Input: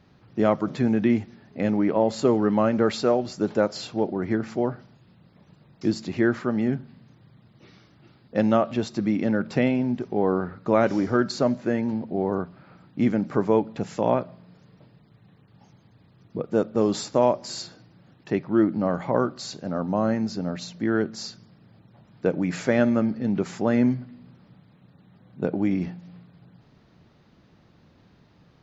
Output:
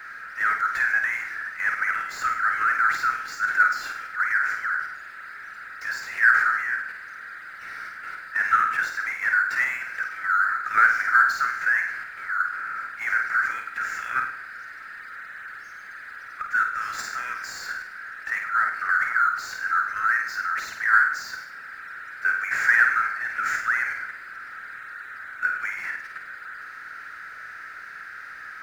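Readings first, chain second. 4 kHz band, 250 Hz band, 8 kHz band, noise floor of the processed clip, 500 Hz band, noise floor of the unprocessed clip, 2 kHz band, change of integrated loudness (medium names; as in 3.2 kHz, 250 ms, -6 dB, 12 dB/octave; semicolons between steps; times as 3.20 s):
-3.5 dB, under -30 dB, no reading, -41 dBFS, under -25 dB, -58 dBFS, +17.5 dB, +1.5 dB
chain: Chebyshev high-pass 1.3 kHz, order 8; level held to a coarse grid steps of 11 dB; power-law waveshaper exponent 0.5; resonant high shelf 2.3 kHz -11.5 dB, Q 3; flutter echo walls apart 8.7 m, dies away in 0.5 s; trim +6.5 dB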